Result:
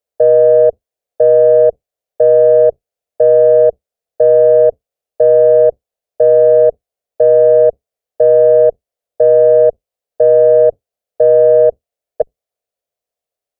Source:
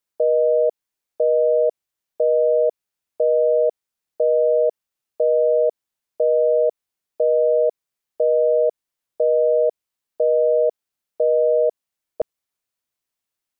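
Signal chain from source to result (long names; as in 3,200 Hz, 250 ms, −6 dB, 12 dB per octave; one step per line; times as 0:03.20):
sub-octave generator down 2 octaves, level −2 dB
soft clipping −12.5 dBFS, distortion −19 dB
flat-topped bell 560 Hz +15.5 dB 1 octave
level −4 dB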